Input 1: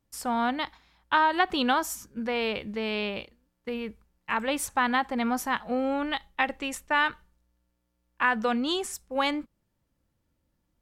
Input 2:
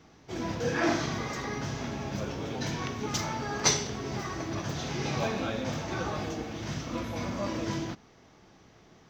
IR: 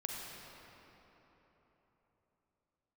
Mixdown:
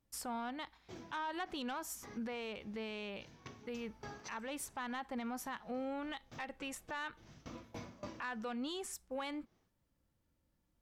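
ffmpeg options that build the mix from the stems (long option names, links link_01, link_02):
-filter_complex "[0:a]volume=-4.5dB,asplit=2[link_01][link_02];[1:a]aeval=exprs='val(0)*pow(10,-22*if(lt(mod(3.5*n/s,1),2*abs(3.5)/1000),1-mod(3.5*n/s,1)/(2*abs(3.5)/1000),(mod(3.5*n/s,1)-2*abs(3.5)/1000)/(1-2*abs(3.5)/1000))/20)':channel_layout=same,adelay=600,volume=-8.5dB[link_03];[link_02]apad=whole_len=427644[link_04];[link_03][link_04]sidechaincompress=threshold=-47dB:ratio=4:attack=16:release=209[link_05];[link_01][link_05]amix=inputs=2:normalize=0,asoftclip=type=tanh:threshold=-21.5dB,alimiter=level_in=10dB:limit=-24dB:level=0:latency=1:release=330,volume=-10dB"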